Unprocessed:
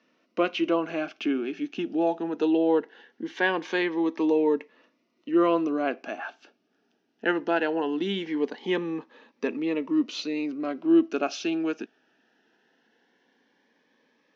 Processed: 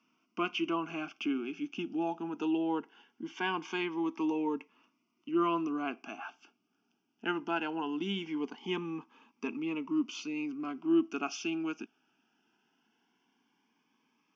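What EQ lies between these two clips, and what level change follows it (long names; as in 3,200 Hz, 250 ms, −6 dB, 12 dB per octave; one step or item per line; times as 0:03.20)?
phaser with its sweep stopped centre 2,700 Hz, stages 8
−2.5 dB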